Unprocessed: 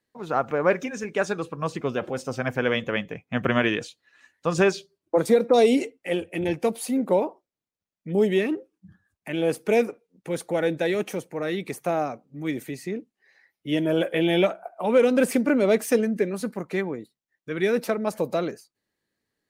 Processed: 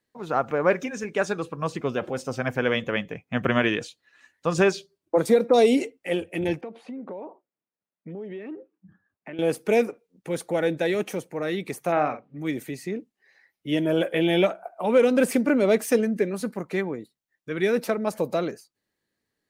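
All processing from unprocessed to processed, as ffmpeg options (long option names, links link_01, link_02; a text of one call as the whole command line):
ffmpeg -i in.wav -filter_complex "[0:a]asettb=1/sr,asplit=3[link_01][link_02][link_03];[link_01]atrim=end=6.614[link_04];[link_02]atrim=start=6.61:end=9.39,asetpts=PTS-STARTPTS,afade=type=in:duration=0.004:curve=qsin,afade=type=out:start_time=2.776:duration=0.004:curve=qsin,acompressor=threshold=-32dB:ratio=10:attack=3.2:release=140:knee=1:detection=peak,highpass=170,lowpass=2000[link_05];[link_03]atrim=start=9.386[link_06];[link_04][link_05]acrossfade=duration=0.004:curve1=hsin:curve2=qsin[link_07];[link_07][link_06]acrossfade=duration=0.004:curve1=qsin:curve2=hsin,asettb=1/sr,asplit=3[link_08][link_09][link_10];[link_08]atrim=end=11.924[link_11];[link_09]atrim=start=11.92:end=12.38,asetpts=PTS-STARTPTS,afade=type=in:duration=0.004:curve=qsin,afade=type=out:start_time=0.456:duration=0.004:curve=qsin,lowpass=2800,equalizer=frequency=2100:width_type=o:width=2.1:gain=9,asplit=2[link_12][link_13];[link_13]adelay=46,volume=-9.5dB[link_14];[link_12][link_14]amix=inputs=2:normalize=0,atrim=end_sample=20286[link_15];[link_10]atrim=start=12.376[link_16];[link_11][link_15]acrossfade=duration=0.004:curve1=hsin:curve2=qsin[link_17];[link_17][link_16]acrossfade=duration=0.004:curve1=qsin:curve2=hsin" out.wav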